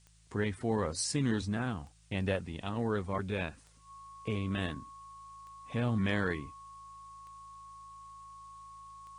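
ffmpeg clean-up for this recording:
ffmpeg -i in.wav -af "adeclick=threshold=4,bandreject=frequency=53.8:width_type=h:width=4,bandreject=frequency=107.6:width_type=h:width=4,bandreject=frequency=161.4:width_type=h:width=4,bandreject=frequency=1100:width=30,agate=range=-21dB:threshold=-45dB" out.wav

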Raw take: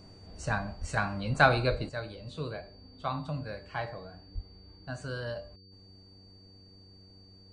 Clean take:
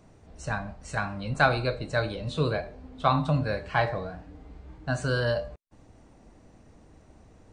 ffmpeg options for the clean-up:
ffmpeg -i in.wav -filter_complex "[0:a]bandreject=frequency=95.2:width_type=h:width=4,bandreject=frequency=190.4:width_type=h:width=4,bandreject=frequency=285.6:width_type=h:width=4,bandreject=frequency=380.8:width_type=h:width=4,bandreject=frequency=476:width_type=h:width=4,bandreject=frequency=4600:width=30,asplit=3[link_01][link_02][link_03];[link_01]afade=type=out:start_time=0.8:duration=0.02[link_04];[link_02]highpass=frequency=140:width=0.5412,highpass=frequency=140:width=1.3066,afade=type=in:start_time=0.8:duration=0.02,afade=type=out:start_time=0.92:duration=0.02[link_05];[link_03]afade=type=in:start_time=0.92:duration=0.02[link_06];[link_04][link_05][link_06]amix=inputs=3:normalize=0,asplit=3[link_07][link_08][link_09];[link_07]afade=type=out:start_time=1.7:duration=0.02[link_10];[link_08]highpass=frequency=140:width=0.5412,highpass=frequency=140:width=1.3066,afade=type=in:start_time=1.7:duration=0.02,afade=type=out:start_time=1.82:duration=0.02[link_11];[link_09]afade=type=in:start_time=1.82:duration=0.02[link_12];[link_10][link_11][link_12]amix=inputs=3:normalize=0,asplit=3[link_13][link_14][link_15];[link_13]afade=type=out:start_time=4.34:duration=0.02[link_16];[link_14]highpass=frequency=140:width=0.5412,highpass=frequency=140:width=1.3066,afade=type=in:start_time=4.34:duration=0.02,afade=type=out:start_time=4.46:duration=0.02[link_17];[link_15]afade=type=in:start_time=4.46:duration=0.02[link_18];[link_16][link_17][link_18]amix=inputs=3:normalize=0,asetnsamples=nb_out_samples=441:pad=0,asendcmd='1.89 volume volume 10.5dB',volume=0dB" out.wav

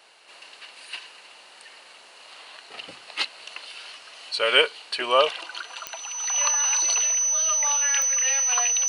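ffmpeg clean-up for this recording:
ffmpeg -i in.wav -af "adeclick=threshold=4,bandreject=frequency=6000:width=30" out.wav

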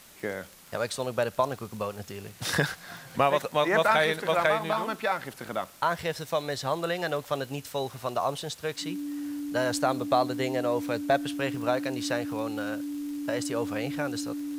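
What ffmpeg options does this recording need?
ffmpeg -i in.wav -af "adeclick=threshold=4,bandreject=frequency=290:width=30,afwtdn=0.0025" out.wav

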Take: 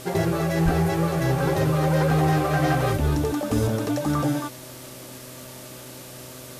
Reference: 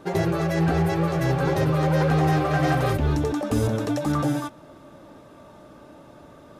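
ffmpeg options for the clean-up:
ffmpeg -i in.wav -filter_complex "[0:a]bandreject=frequency=126.7:width_type=h:width=4,bandreject=frequency=253.4:width_type=h:width=4,bandreject=frequency=380.1:width_type=h:width=4,bandreject=frequency=506.8:width_type=h:width=4,bandreject=frequency=633.5:width_type=h:width=4,asplit=3[link_01][link_02][link_03];[link_01]afade=type=out:start_time=0.64:duration=0.02[link_04];[link_02]highpass=frequency=140:width=0.5412,highpass=frequency=140:width=1.3066,afade=type=in:start_time=0.64:duration=0.02,afade=type=out:start_time=0.76:duration=0.02[link_05];[link_03]afade=type=in:start_time=0.76:duration=0.02[link_06];[link_04][link_05][link_06]amix=inputs=3:normalize=0,afwtdn=0.0079" out.wav

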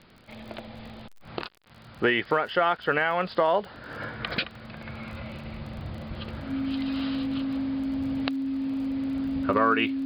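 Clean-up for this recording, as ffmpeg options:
ffmpeg -i in.wav -af "adeclick=threshold=4,bandreject=frequency=270:width=30" out.wav

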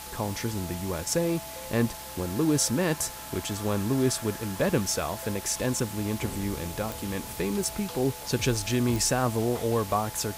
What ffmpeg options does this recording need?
ffmpeg -i in.wav -af "adeclick=threshold=4,bandreject=frequency=65:width_type=h:width=4,bandreject=frequency=130:width_type=h:width=4,bandreject=frequency=195:width_type=h:width=4,bandreject=frequency=860:width=30,afwtdn=0.0089" out.wav

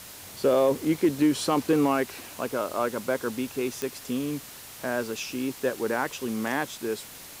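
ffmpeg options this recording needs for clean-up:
ffmpeg -i in.wav -af "adeclick=threshold=4,afwtdn=0.0071" out.wav

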